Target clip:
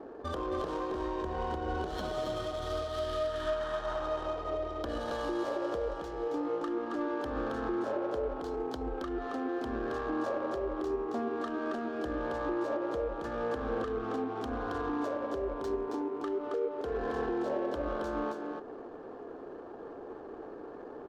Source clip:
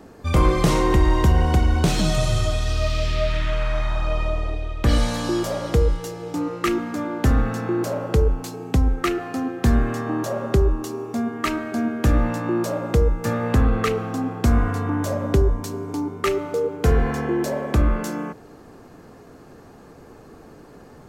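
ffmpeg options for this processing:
-af "asuperstop=centerf=2300:order=20:qfactor=2.2,lowshelf=f=240:t=q:w=1.5:g=-13.5,acompressor=threshold=0.0251:ratio=3,alimiter=level_in=1.12:limit=0.0631:level=0:latency=1:release=192,volume=0.891,adynamicsmooth=sensitivity=7.5:basefreq=1200,aecho=1:1:272:0.596"

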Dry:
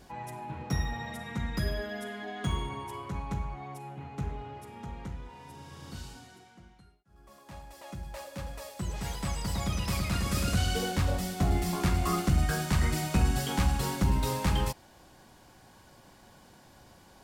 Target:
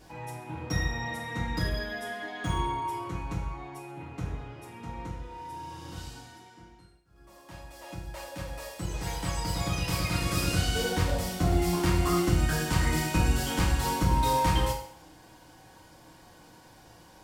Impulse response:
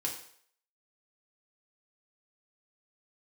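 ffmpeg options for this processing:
-filter_complex "[1:a]atrim=start_sample=2205[s0];[0:a][s0]afir=irnorm=-1:irlink=0"

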